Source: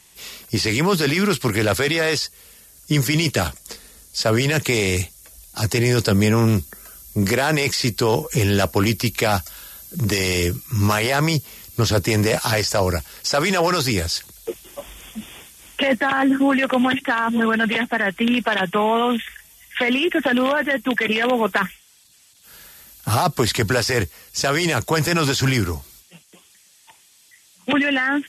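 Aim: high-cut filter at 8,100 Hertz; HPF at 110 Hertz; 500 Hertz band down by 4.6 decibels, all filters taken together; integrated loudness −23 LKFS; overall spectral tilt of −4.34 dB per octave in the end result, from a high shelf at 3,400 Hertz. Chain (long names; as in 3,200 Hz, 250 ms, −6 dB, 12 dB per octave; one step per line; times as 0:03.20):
high-pass filter 110 Hz
low-pass filter 8,100 Hz
parametric band 500 Hz −5.5 dB
high-shelf EQ 3,400 Hz −8 dB
level −0.5 dB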